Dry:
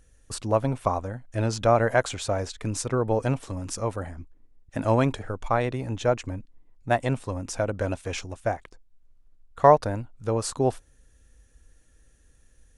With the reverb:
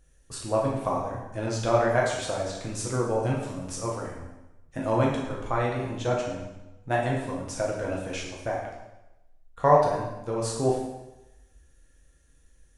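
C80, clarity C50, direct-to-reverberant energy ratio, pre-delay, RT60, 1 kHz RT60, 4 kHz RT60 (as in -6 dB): 5.0 dB, 2.5 dB, -3.0 dB, 4 ms, 1.0 s, 1.0 s, 0.90 s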